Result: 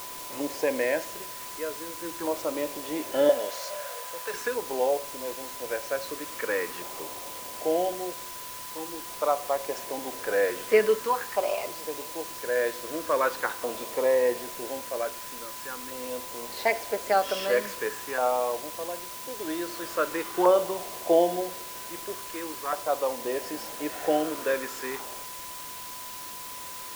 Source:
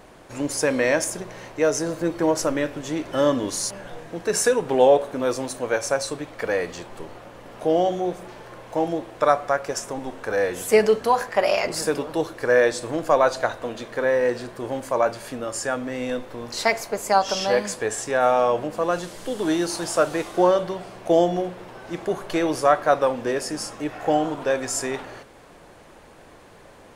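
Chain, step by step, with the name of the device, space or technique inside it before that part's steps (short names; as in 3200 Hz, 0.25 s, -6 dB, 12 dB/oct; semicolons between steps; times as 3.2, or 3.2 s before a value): shortwave radio (BPF 350–2900 Hz; tremolo 0.29 Hz, depth 70%; LFO notch saw down 0.44 Hz 590–1900 Hz; whine 1000 Hz -43 dBFS; white noise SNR 11 dB); 3.29–4.34 resonant low shelf 440 Hz -9.5 dB, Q 3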